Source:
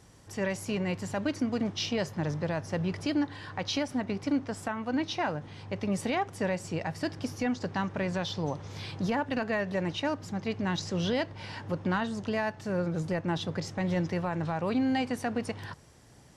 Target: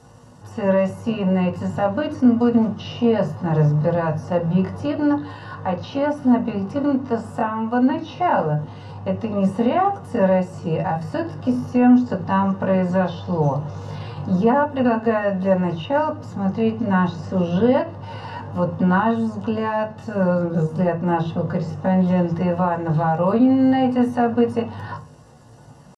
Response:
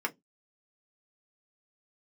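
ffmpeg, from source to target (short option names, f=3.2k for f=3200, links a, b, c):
-filter_complex "[0:a]acrossover=split=2700[a][b];[b]acompressor=threshold=-51dB:ratio=4:attack=1:release=60[c];[a][c]amix=inputs=2:normalize=0,atempo=0.63[d];[1:a]atrim=start_sample=2205,asetrate=22932,aresample=44100[e];[d][e]afir=irnorm=-1:irlink=0"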